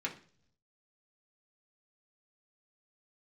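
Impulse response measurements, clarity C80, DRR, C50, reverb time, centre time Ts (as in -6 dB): 17.5 dB, -2.5 dB, 12.5 dB, 0.50 s, 12 ms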